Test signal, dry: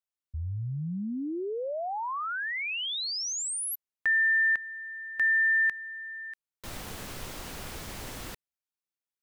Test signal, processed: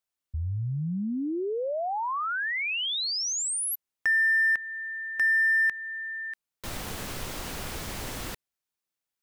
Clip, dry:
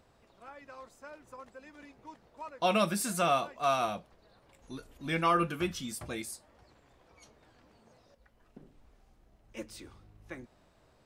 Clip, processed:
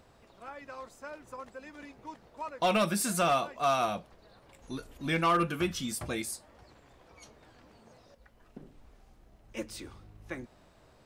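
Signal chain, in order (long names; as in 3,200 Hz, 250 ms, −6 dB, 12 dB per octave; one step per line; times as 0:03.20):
in parallel at −3 dB: downward compressor 20 to 1, threshold −35 dBFS
on the sum: hard clipping −20 dBFS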